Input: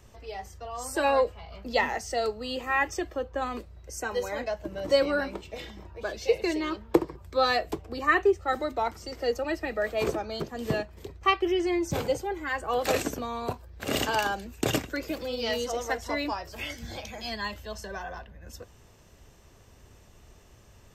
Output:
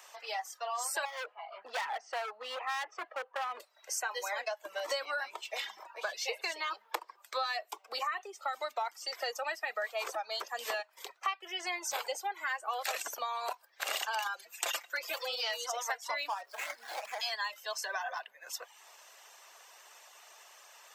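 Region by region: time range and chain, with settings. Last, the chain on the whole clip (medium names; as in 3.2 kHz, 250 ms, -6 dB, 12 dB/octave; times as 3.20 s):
1.05–3.60 s: low-pass 3 kHz + treble shelf 2.1 kHz -10.5 dB + overload inside the chain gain 32 dB
7.71–8.62 s: band-stop 1.7 kHz, Q 8.2 + compression 2.5:1, threshold -28 dBFS
14.20–15.25 s: high-pass 330 Hz + comb 5.8 ms, depth 83%
16.28–17.20 s: median filter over 15 samples + tape noise reduction on one side only encoder only
whole clip: reverb removal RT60 0.54 s; high-pass 730 Hz 24 dB/octave; compression 6:1, threshold -41 dBFS; trim +8 dB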